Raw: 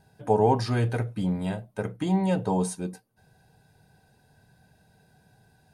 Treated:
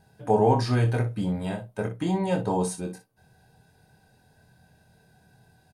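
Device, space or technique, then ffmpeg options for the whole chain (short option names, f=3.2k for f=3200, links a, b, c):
slapback doubling: -filter_complex "[0:a]asplit=3[a][b][c];[b]adelay=24,volume=-6dB[d];[c]adelay=60,volume=-11.5dB[e];[a][d][e]amix=inputs=3:normalize=0"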